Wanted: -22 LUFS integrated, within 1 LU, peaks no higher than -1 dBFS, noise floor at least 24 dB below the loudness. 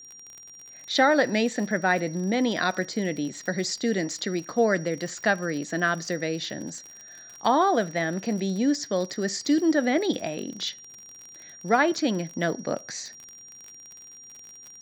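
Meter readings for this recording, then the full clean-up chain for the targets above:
tick rate 49 per s; steady tone 5.7 kHz; tone level -44 dBFS; loudness -26.0 LUFS; peak level -7.0 dBFS; loudness target -22.0 LUFS
-> de-click; band-stop 5.7 kHz, Q 30; trim +4 dB

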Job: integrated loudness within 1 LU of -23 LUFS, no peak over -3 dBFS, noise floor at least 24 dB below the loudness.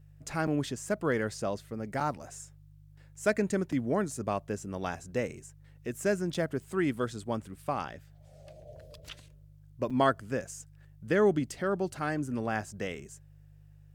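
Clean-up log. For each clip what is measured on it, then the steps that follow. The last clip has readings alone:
dropouts 5; longest dropout 5.3 ms; hum 50 Hz; highest harmonic 150 Hz; hum level -52 dBFS; loudness -32.0 LUFS; peak level -12.5 dBFS; loudness target -23.0 LUFS
-> interpolate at 0.47/2.00/3.72/6.34/9.90 s, 5.3 ms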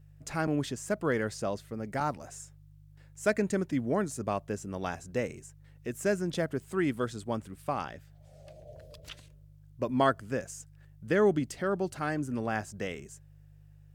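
dropouts 0; hum 50 Hz; highest harmonic 150 Hz; hum level -52 dBFS
-> de-hum 50 Hz, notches 3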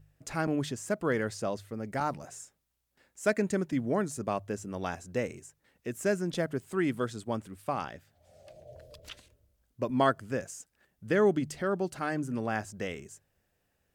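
hum not found; loudness -32.0 LUFS; peak level -12.5 dBFS; loudness target -23.0 LUFS
-> trim +9 dB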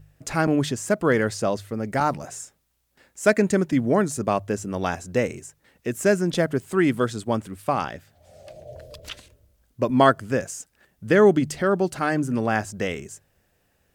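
loudness -23.0 LUFS; peak level -3.5 dBFS; noise floor -68 dBFS

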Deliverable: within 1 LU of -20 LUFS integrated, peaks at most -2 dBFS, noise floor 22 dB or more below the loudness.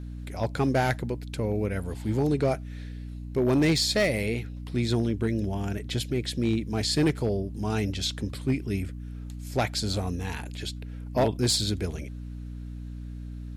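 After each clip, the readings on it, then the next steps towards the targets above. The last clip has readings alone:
clipped samples 0.5%; clipping level -17.0 dBFS; hum 60 Hz; highest harmonic 300 Hz; hum level -35 dBFS; loudness -28.0 LUFS; peak level -17.0 dBFS; loudness target -20.0 LUFS
-> clip repair -17 dBFS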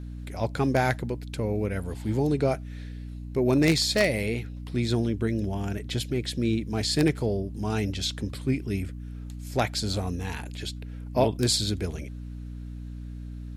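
clipped samples 0.0%; hum 60 Hz; highest harmonic 300 Hz; hum level -35 dBFS
-> hum notches 60/120/180/240/300 Hz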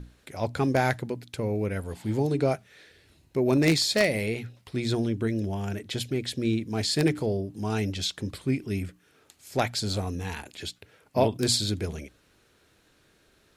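hum not found; loudness -28.0 LUFS; peak level -7.0 dBFS; loudness target -20.0 LUFS
-> trim +8 dB; peak limiter -2 dBFS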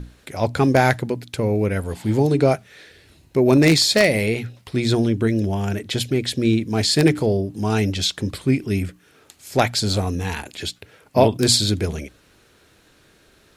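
loudness -20.0 LUFS; peak level -2.0 dBFS; noise floor -56 dBFS

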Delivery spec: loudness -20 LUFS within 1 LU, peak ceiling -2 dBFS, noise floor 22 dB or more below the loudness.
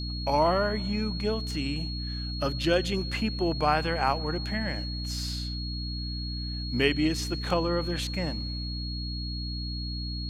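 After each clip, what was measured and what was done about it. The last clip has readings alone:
hum 60 Hz; highest harmonic 300 Hz; hum level -32 dBFS; steady tone 4.3 kHz; tone level -37 dBFS; loudness -29.0 LUFS; peak level -8.0 dBFS; loudness target -20.0 LUFS
-> hum notches 60/120/180/240/300 Hz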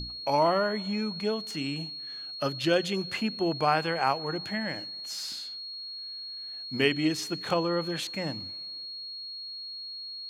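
hum not found; steady tone 4.3 kHz; tone level -37 dBFS
-> band-stop 4.3 kHz, Q 30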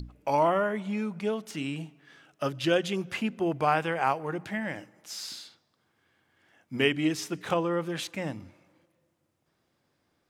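steady tone not found; loudness -29.5 LUFS; peak level -8.0 dBFS; loudness target -20.0 LUFS
-> trim +9.5 dB; peak limiter -2 dBFS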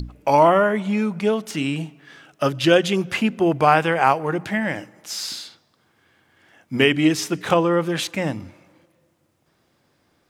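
loudness -20.5 LUFS; peak level -2.0 dBFS; noise floor -65 dBFS

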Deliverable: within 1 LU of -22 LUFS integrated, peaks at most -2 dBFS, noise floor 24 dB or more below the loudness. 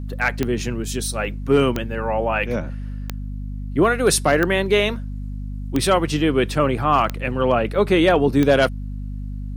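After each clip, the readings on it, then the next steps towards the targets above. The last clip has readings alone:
clicks found 7; hum 50 Hz; highest harmonic 250 Hz; hum level -26 dBFS; loudness -19.5 LUFS; peak level -3.5 dBFS; loudness target -22.0 LUFS
-> de-click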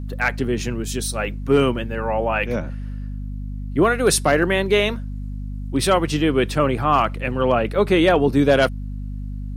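clicks found 0; hum 50 Hz; highest harmonic 250 Hz; hum level -26 dBFS
-> de-hum 50 Hz, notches 5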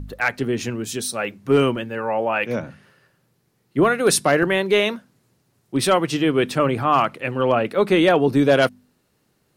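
hum not found; loudness -20.0 LUFS; peak level -4.0 dBFS; loudness target -22.0 LUFS
-> trim -2 dB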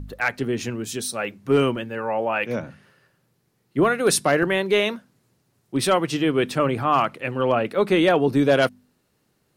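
loudness -22.0 LUFS; peak level -6.0 dBFS; noise floor -69 dBFS

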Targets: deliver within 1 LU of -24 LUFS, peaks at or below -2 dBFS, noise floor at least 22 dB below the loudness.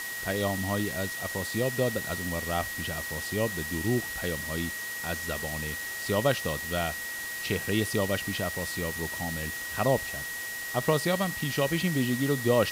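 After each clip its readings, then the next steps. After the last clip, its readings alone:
steady tone 1.9 kHz; tone level -35 dBFS; noise floor -36 dBFS; noise floor target -52 dBFS; loudness -29.5 LUFS; peak level -12.0 dBFS; loudness target -24.0 LUFS
-> band-stop 1.9 kHz, Q 30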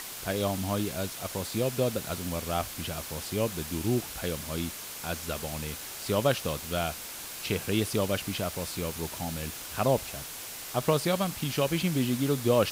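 steady tone not found; noise floor -41 dBFS; noise floor target -53 dBFS
-> noise reduction 12 dB, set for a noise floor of -41 dBFS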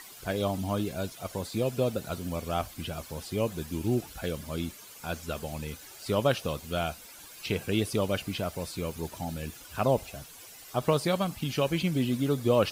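noise floor -49 dBFS; noise floor target -53 dBFS
-> noise reduction 6 dB, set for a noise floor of -49 dBFS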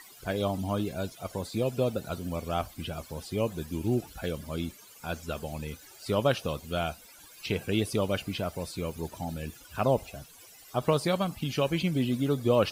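noise floor -53 dBFS; noise floor target -54 dBFS
-> noise reduction 6 dB, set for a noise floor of -53 dBFS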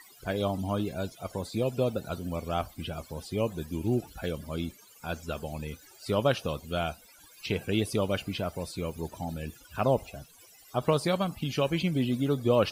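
noise floor -56 dBFS; loudness -31.5 LUFS; peak level -11.5 dBFS; loudness target -24.0 LUFS
-> trim +7.5 dB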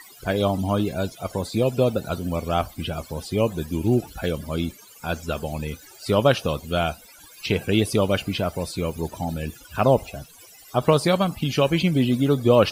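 loudness -24.0 LUFS; peak level -4.0 dBFS; noise floor -48 dBFS

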